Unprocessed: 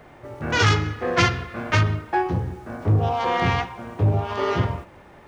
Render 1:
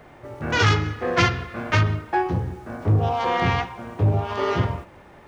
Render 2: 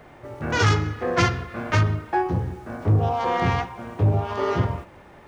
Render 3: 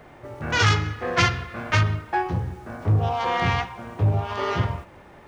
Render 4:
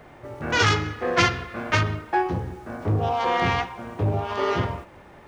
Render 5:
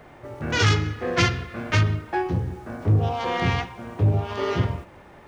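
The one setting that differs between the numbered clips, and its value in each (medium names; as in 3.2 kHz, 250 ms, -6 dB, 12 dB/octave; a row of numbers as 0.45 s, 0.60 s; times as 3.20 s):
dynamic bell, frequency: 9.5 kHz, 3 kHz, 330 Hz, 110 Hz, 960 Hz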